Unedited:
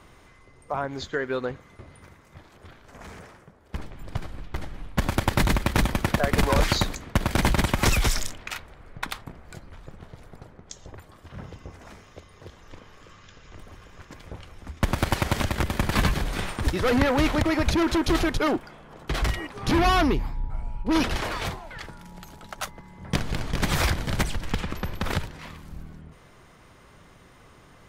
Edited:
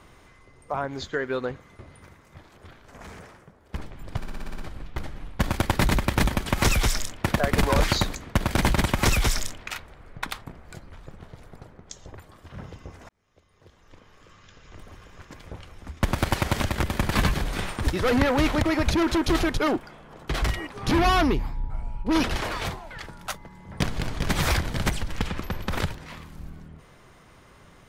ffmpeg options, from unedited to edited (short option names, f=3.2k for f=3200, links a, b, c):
-filter_complex "[0:a]asplit=12[a][b][c][d][e][f][g][h][i][j][k][l];[a]atrim=end=4.232[m];[b]atrim=start=4.168:end=4.232[n];[c]atrim=start=4.168:end=4.232[o];[d]atrim=start=4.168:end=4.232[p];[e]atrim=start=4.168:end=4.232[q];[f]atrim=start=4.168:end=4.232[r];[g]atrim=start=4.168:end=4.232[s];[h]atrim=start=4.168:end=6.042[t];[i]atrim=start=7.668:end=8.452[u];[j]atrim=start=6.038:end=11.89,asetpts=PTS-STARTPTS,afade=t=out:st=5.848:d=0.004:c=hsin[v];[k]atrim=start=11.89:end=22.052,asetpts=PTS-STARTPTS,afade=t=in:d=1.76[w];[l]atrim=start=22.578[x];[m][n]acrossfade=d=0.004:c1=hsin:c2=hsin[y];[y][o]acrossfade=d=0.004:c1=hsin:c2=hsin[z];[z][p]acrossfade=d=0.004:c1=hsin:c2=hsin[aa];[aa][q]acrossfade=d=0.004:c1=hsin:c2=hsin[ab];[ab][r]acrossfade=d=0.004:c1=hsin:c2=hsin[ac];[ac][s]acrossfade=d=0.004:c1=hsin:c2=hsin[ad];[ad][t]acrossfade=d=0.004:c1=hsin:c2=hsin[ae];[ae][u]acrossfade=d=0.004:c1=hsin:c2=hsin[af];[v][w]concat=n=2:v=0:a=1[ag];[af][ag]acrossfade=d=0.004:c1=hsin:c2=hsin[ah];[ah][x]acrossfade=d=0.004:c1=hsin:c2=hsin"